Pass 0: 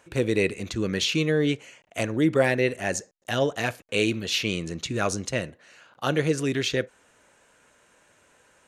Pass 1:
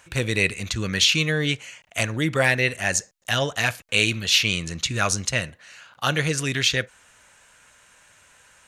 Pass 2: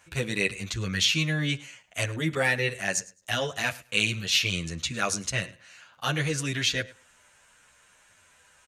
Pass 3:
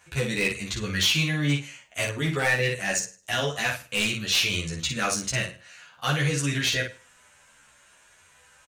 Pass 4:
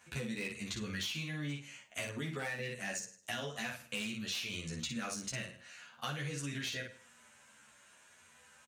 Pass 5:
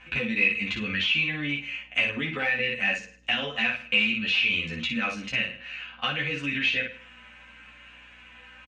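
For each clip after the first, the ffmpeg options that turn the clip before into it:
-af "equalizer=f=360:t=o:w=2.2:g=-14,volume=8.5dB"
-filter_complex "[0:a]aecho=1:1:105|210:0.0891|0.016,asplit=2[a][b];[b]adelay=9.5,afreqshift=-0.84[c];[a][c]amix=inputs=2:normalize=1,volume=-2dB"
-filter_complex "[0:a]asoftclip=type=hard:threshold=-19.5dB,asplit=2[a][b];[b]aecho=0:1:14|56:0.708|0.562[c];[a][c]amix=inputs=2:normalize=0"
-af "highpass=88,equalizer=f=230:w=7.1:g=11.5,acompressor=threshold=-32dB:ratio=6,volume=-5dB"
-af "aeval=exprs='val(0)+0.000447*(sin(2*PI*60*n/s)+sin(2*PI*2*60*n/s)/2+sin(2*PI*3*60*n/s)/3+sin(2*PI*4*60*n/s)/4+sin(2*PI*5*60*n/s)/5)':c=same,lowpass=f=2.6k:t=q:w=4.3,aecho=1:1:3.9:0.45,volume=7dB"

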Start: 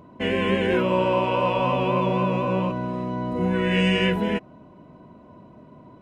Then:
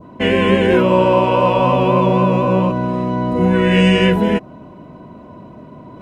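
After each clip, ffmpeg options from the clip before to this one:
-af "adynamicequalizer=threshold=0.0126:dfrequency=2400:dqfactor=0.86:tfrequency=2400:tqfactor=0.86:attack=5:release=100:ratio=0.375:range=2.5:mode=cutabove:tftype=bell,areverse,acompressor=mode=upward:threshold=-42dB:ratio=2.5,areverse,volume=9dB"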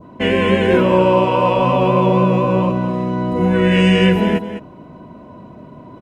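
-af "aecho=1:1:205:0.299,volume=-1dB"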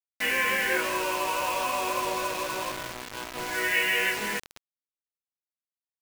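-filter_complex "[0:a]bandpass=f=1.9k:t=q:w=1.9:csg=0,asplit=2[a][b];[b]adelay=19,volume=-2dB[c];[a][c]amix=inputs=2:normalize=0,acrusher=bits=4:mix=0:aa=0.000001,volume=-3dB"

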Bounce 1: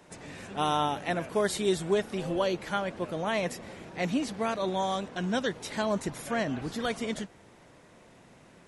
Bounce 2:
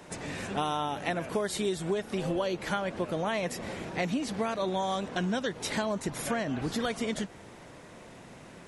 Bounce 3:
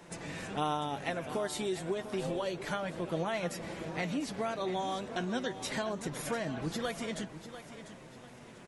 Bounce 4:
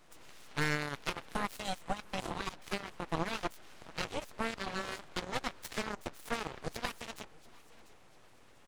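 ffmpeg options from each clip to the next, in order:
-af "acompressor=threshold=-34dB:ratio=6,volume=6.5dB"
-af "flanger=delay=5.9:depth=2.3:regen=49:speed=0.29:shape=sinusoidal,aecho=1:1:695|1390|2085|2780:0.237|0.083|0.029|0.0102"
-af "aeval=exprs='abs(val(0))':c=same,aeval=exprs='0.112*(cos(1*acos(clip(val(0)/0.112,-1,1)))-cos(1*PI/2))+0.0224*(cos(7*acos(clip(val(0)/0.112,-1,1)))-cos(7*PI/2))':c=same,volume=1.5dB"

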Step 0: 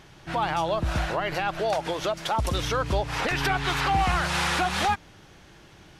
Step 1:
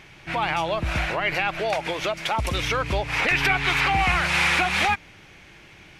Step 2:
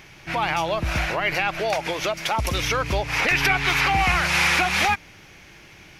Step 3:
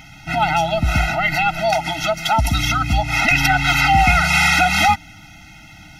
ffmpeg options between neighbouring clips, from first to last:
-af "equalizer=f=2.3k:t=o:w=0.6:g=12.5"
-af "aexciter=amount=2:drive=2:freq=4.9k,volume=1dB"
-af "afftfilt=real='re*eq(mod(floor(b*sr/1024/310),2),0)':imag='im*eq(mod(floor(b*sr/1024/310),2),0)':win_size=1024:overlap=0.75,volume=8dB"

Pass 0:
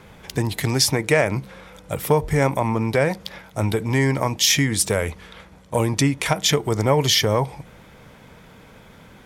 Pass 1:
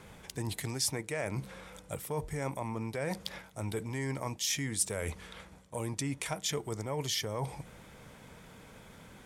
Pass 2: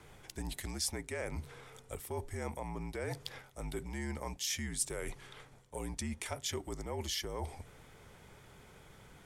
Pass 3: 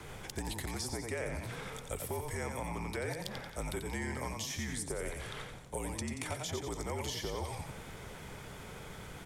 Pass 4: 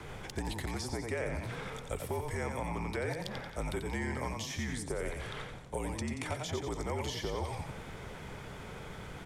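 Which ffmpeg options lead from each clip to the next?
-af "areverse,acompressor=threshold=-26dB:ratio=6,areverse,equalizer=f=8.6k:t=o:w=0.9:g=7.5,volume=-6.5dB"
-af "afreqshift=-55,volume=-4dB"
-filter_complex "[0:a]asplit=5[a][b][c][d][e];[b]adelay=89,afreqshift=39,volume=-6.5dB[f];[c]adelay=178,afreqshift=78,volume=-15.6dB[g];[d]adelay=267,afreqshift=117,volume=-24.7dB[h];[e]adelay=356,afreqshift=156,volume=-33.9dB[i];[a][f][g][h][i]amix=inputs=5:normalize=0,acrossover=split=510|1300[j][k][l];[j]acompressor=threshold=-48dB:ratio=4[m];[k]acompressor=threshold=-54dB:ratio=4[n];[l]acompressor=threshold=-51dB:ratio=4[o];[m][n][o]amix=inputs=3:normalize=0,volume=9dB"
-af "lowpass=f=4k:p=1,volume=2.5dB"

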